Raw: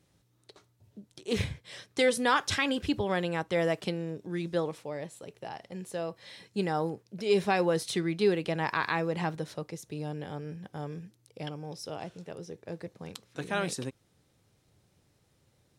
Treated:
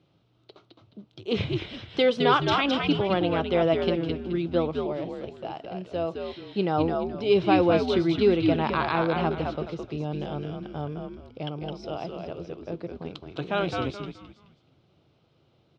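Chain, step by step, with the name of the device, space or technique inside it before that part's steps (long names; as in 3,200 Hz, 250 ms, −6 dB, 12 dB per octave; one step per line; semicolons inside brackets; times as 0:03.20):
frequency-shifting delay pedal into a guitar cabinet (echo with shifted repeats 213 ms, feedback 32%, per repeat −98 Hz, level −4 dB; loudspeaker in its box 89–4,200 Hz, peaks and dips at 140 Hz +4 dB, 340 Hz +5 dB, 660 Hz +5 dB, 1,300 Hz +4 dB, 1,800 Hz −10 dB, 3,000 Hz +4 dB)
0:10.12–0:10.82: high-shelf EQ 4,500 Hz +6.5 dB
level +2.5 dB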